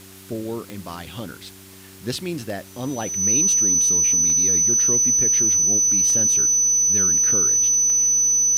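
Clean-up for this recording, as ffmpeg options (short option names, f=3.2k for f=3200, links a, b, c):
-af "adeclick=t=4,bandreject=f=95.8:t=h:w=4,bandreject=f=191.6:t=h:w=4,bandreject=f=287.4:t=h:w=4,bandreject=f=383.2:t=h:w=4,bandreject=f=6k:w=30,afftdn=nr=25:nf=-43"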